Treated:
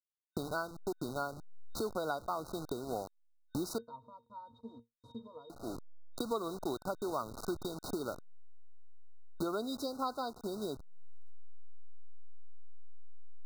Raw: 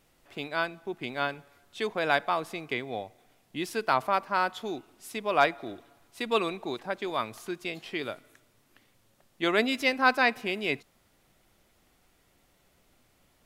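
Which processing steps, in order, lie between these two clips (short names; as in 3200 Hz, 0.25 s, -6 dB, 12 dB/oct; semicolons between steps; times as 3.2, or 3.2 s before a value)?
level-crossing sampler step -38 dBFS; compressor 5:1, threshold -42 dBFS, peak gain reduction 22.5 dB; 3.78–5.5 octave resonator A#, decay 0.16 s; FFT band-reject 1500–3700 Hz; gain +8 dB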